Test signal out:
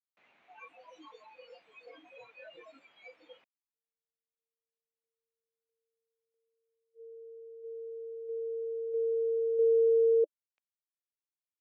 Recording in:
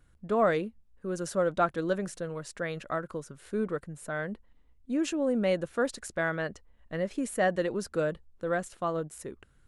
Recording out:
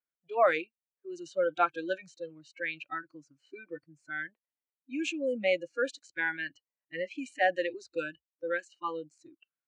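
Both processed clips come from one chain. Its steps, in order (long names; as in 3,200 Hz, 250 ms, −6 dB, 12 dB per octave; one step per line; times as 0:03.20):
noise reduction from a noise print of the clip's start 29 dB
low-pass that shuts in the quiet parts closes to 2,800 Hz, open at −23 dBFS
loudspeaker in its box 390–6,800 Hz, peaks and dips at 400 Hz −4 dB, 670 Hz +3 dB, 2,400 Hz +10 dB, 5,100 Hz −9 dB
level +1 dB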